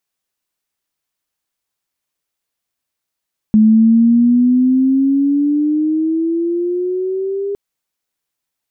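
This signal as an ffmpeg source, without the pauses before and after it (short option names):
-f lavfi -i "aevalsrc='pow(10,(-5.5-12*t/4.01)/20)*sin(2*PI*214*4.01/(11*log(2)/12)*(exp(11*log(2)/12*t/4.01)-1))':d=4.01:s=44100"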